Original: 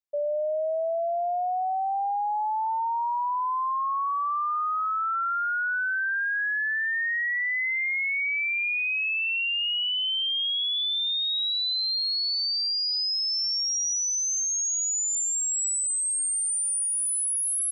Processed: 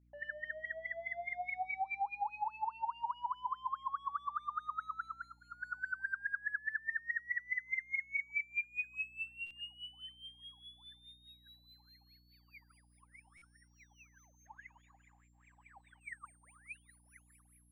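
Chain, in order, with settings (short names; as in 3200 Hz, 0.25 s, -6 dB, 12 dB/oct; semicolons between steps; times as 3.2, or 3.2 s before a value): overloaded stage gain 35.5 dB; 12.69–13.68 careless resampling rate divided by 3×, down filtered, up hold; 14.46–16.01 overdrive pedal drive 28 dB, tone 1300 Hz, clips at -35 dBFS; fixed phaser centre 1400 Hz, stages 6; soft clip -32 dBFS, distortion -25 dB; wah 4.8 Hz 780–2400 Hz, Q 20; bell 1500 Hz +11.5 dB 0.78 oct; hum 60 Hz, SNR 30 dB; compressor 6:1, threshold -46 dBFS, peak gain reduction 10.5 dB; stuck buffer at 9.46/13.37, samples 256, times 7; gain +12.5 dB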